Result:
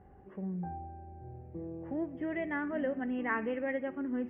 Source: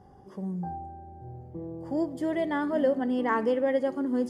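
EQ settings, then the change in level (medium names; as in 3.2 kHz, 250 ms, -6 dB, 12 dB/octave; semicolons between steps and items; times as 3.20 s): elliptic low-pass 2.6 kHz, stop band 40 dB; dynamic bell 490 Hz, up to -6 dB, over -37 dBFS, Q 0.98; graphic EQ 125/250/500/1000 Hz -8/-5/-4/-11 dB; +4.0 dB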